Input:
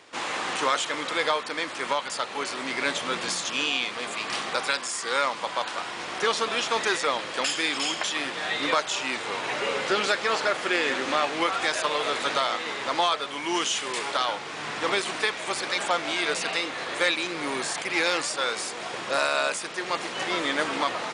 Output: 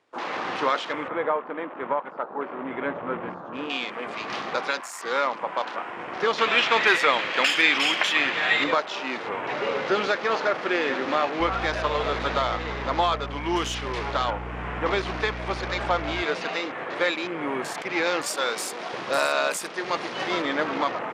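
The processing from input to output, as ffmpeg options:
-filter_complex "[0:a]asettb=1/sr,asplit=3[a][b][c];[a]atrim=end=1.084[d];[b]atrim=start=1.08:end=3.7,asetpts=PTS-STARTPTS,afade=t=in:d=0.004:c=qsin,afade=t=out:st=2.616:d=0.004:c=qsin,lowpass=1.5k[e];[c]atrim=start=3.696[f];[d][e]acrossfade=d=0.004:c1=hsin:c2=qsin[g];[g][f]acrossfade=d=0.004:c1=qsin:c2=hsin,asettb=1/sr,asplit=3[h][i][j];[h]atrim=end=6.384[k];[i]atrim=start=6.38:end=8.64,asetpts=PTS-STARTPTS,afade=t=in:d=0.004:c=qsin,afade=t=out:st=2.256:d=0.004:c=qsin,equalizer=f=2.4k:w=0.88:g=12[l];[j]atrim=start=8.636[m];[k][l]acrossfade=d=0.004:c1=hsin:c2=qsin[n];[n][m]acrossfade=d=0.004:c1=qsin:c2=hsin,asettb=1/sr,asplit=3[o][p][q];[o]atrim=end=11.404[r];[p]atrim=start=11.4:end=16.23,asetpts=PTS-STARTPTS,afade=t=in:d=0.004:c=qsin,afade=t=out:st=4.826:d=0.004:c=qsin,aeval=exprs='val(0)+0.0141*(sin(2*PI*60*n/s)+sin(2*PI*2*60*n/s)/2+sin(2*PI*3*60*n/s)/3+sin(2*PI*4*60*n/s)/4+sin(2*PI*5*60*n/s)/5)':c=same[s];[q]atrim=start=16.226[t];[r][s]acrossfade=d=0.004:c1=hsin:c2=qsin[u];[u][t]acrossfade=d=0.004:c1=qsin:c2=hsin,asettb=1/sr,asplit=3[v][w][x];[v]atrim=end=18.264[y];[w]atrim=start=18.26:end=20.42,asetpts=PTS-STARTPTS,afade=t=in:d=0.004:c=qsin,afade=t=out:st=2.156:d=0.004:c=qsin,aemphasis=mode=production:type=50kf[z];[x]atrim=start=20.416[aa];[y][z]acrossfade=d=0.004:c1=hsin:c2=qsin[ab];[ab][aa]acrossfade=d=0.004:c1=qsin:c2=hsin,afwtdn=0.0158,highshelf=f=2.2k:g=-10,volume=3dB"

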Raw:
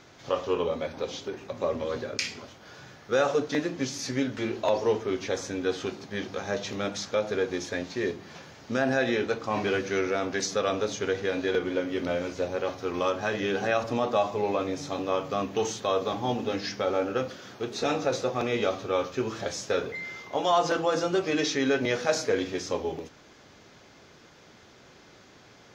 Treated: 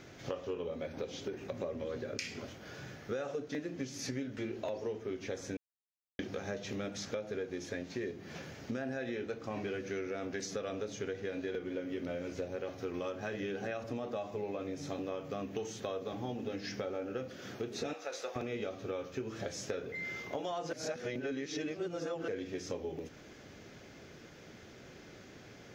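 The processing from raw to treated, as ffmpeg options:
-filter_complex "[0:a]asettb=1/sr,asplit=3[a][b][c];[a]atrim=end=17.934[d];[b]atrim=start=17.93:end=18.36,asetpts=PTS-STARTPTS,afade=t=in:d=0.004:c=qsin,afade=t=out:st=0.426:d=0.004:c=qsin,highpass=780[e];[c]atrim=start=18.356[f];[d][e]acrossfade=d=0.004:c1=hsin:c2=qsin[g];[g][f]acrossfade=d=0.004:c1=qsin:c2=hsin,asplit=5[h][i][j][k][l];[h]atrim=end=5.57,asetpts=PTS-STARTPTS,afade=t=out:st=5.566:d=0.004:c=hsin[m];[i]atrim=start=5.57:end=6.19,asetpts=PTS-STARTPTS,volume=0[n];[j]atrim=start=6.19:end=20.732,asetpts=PTS-STARTPTS,afade=t=in:d=0.004:c=hsin[o];[k]atrim=start=20.728:end=22.282,asetpts=PTS-STARTPTS,areverse[p];[l]atrim=start=22.278[q];[m][n][o]concat=n=3:v=0:a=1[r];[r][p]acrossfade=d=0.004:c1=hsin:c2=hsin[s];[s][q]acrossfade=d=0.004:c1=hsin:c2=hsin,equalizer=f=1k:t=o:w=1:g=-9,equalizer=f=4k:t=o:w=1:g=-6,equalizer=f=8k:t=o:w=1:g=-4,acompressor=threshold=-39dB:ratio=6,volume=3dB"

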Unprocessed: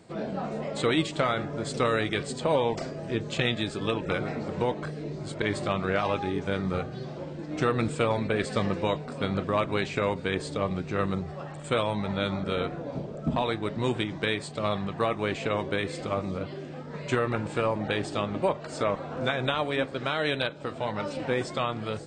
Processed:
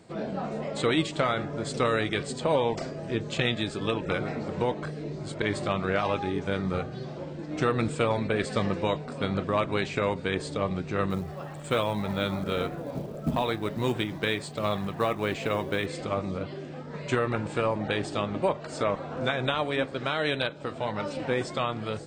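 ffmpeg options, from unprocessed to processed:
-filter_complex "[0:a]asettb=1/sr,asplit=3[a][b][c];[a]atrim=end=11.104[d];[b]atrim=start=11.1:end=15.86,asetpts=PTS-STARTPTS,afade=t=in:d=0.004:c=qsin,afade=t=out:st=4.756:d=0.004:c=qsin,acrusher=bits=7:mode=log:mix=0:aa=0.000001[e];[c]atrim=start=15.856[f];[d][e]acrossfade=d=0.004:c1=hsin:c2=qsin[g];[g][f]acrossfade=d=0.004:c1=qsin:c2=hsin"

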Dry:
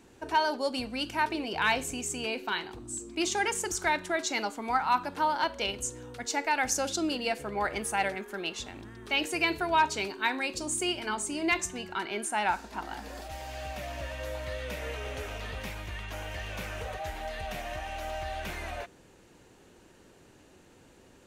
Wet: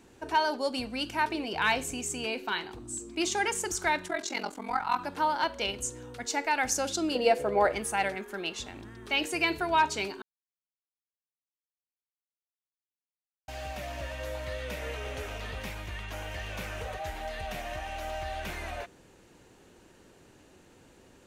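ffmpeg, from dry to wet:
-filter_complex "[0:a]asplit=3[a][b][c];[a]afade=t=out:st=4.08:d=0.02[d];[b]aeval=exprs='val(0)*sin(2*PI*22*n/s)':c=same,afade=t=in:st=4.08:d=0.02,afade=t=out:st=4.97:d=0.02[e];[c]afade=t=in:st=4.97:d=0.02[f];[d][e][f]amix=inputs=3:normalize=0,asettb=1/sr,asplit=3[g][h][i];[g]atrim=end=7.154[j];[h]atrim=start=7.15:end=7.72,asetpts=PTS-STARTPTS,afade=t=in:d=0.004:c=qsin,afade=t=out:st=0.566:d=0.004:c=qsin,equalizer=f=540:t=o:w=1.1:g=12[k];[i]atrim=start=7.716[l];[j][k]acrossfade=d=0.004:c1=hsin:c2=qsin[m];[m][l]acrossfade=d=0.004:c1=qsin:c2=hsin,asplit=3[n][o][p];[n]atrim=end=10.22,asetpts=PTS-STARTPTS,afade=t=out:st=10.216:d=0.004:c=hsin[q];[o]atrim=start=10.22:end=13.48,asetpts=PTS-STARTPTS,volume=0[r];[p]atrim=start=13.48,asetpts=PTS-STARTPTS,afade=t=in:d=0.004:c=hsin[s];[q][r][s]concat=n=3:v=0:a=1"

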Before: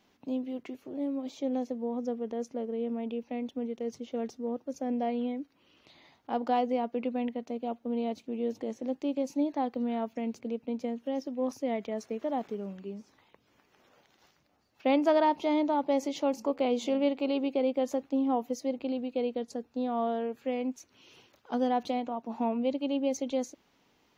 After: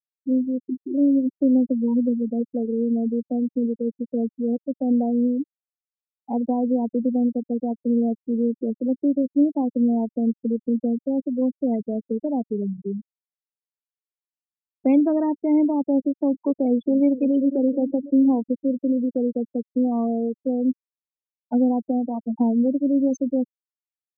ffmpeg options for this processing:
-filter_complex "[0:a]asettb=1/sr,asplit=3[a][b][c];[a]atrim=end=0.714[d];[b]atrim=start=0.71:end=2.41,asetpts=PTS-STARTPTS,afade=t=in:d=0.004:c=qsin,afade=t=out:st=1.696:d=0.004:c=qsin,aecho=1:1:3.4:0.57,atrim=end_sample=74970[e];[c]atrim=start=2.406[f];[d][e]acrossfade=d=0.004:c1=hsin:c2=qsin[g];[g][f]acrossfade=d=0.004:c1=qsin:c2=hsin,asplit=2[h][i];[i]afade=t=in:st=16.49:d=0.01,afade=t=out:st=17.44:d=0.01,aecho=0:1:510|1020|1530|2040|2550|3060:0.211349|0.116242|0.063933|0.0351632|0.0193397|0.0106369[j];[h][j]amix=inputs=2:normalize=0,afftfilt=real='re*gte(hypot(re,im),0.0631)':imag='im*gte(hypot(re,im),0.0631)':win_size=1024:overlap=0.75,lowshelf=f=480:g=10.5,acrossover=split=410|3000[k][l][m];[l]acompressor=threshold=-36dB:ratio=6[n];[k][n][m]amix=inputs=3:normalize=0,volume=4.5dB"

